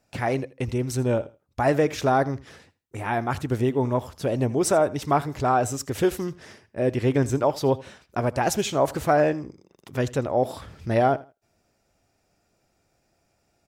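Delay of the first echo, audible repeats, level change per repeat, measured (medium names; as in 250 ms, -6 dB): 81 ms, 2, -13.5 dB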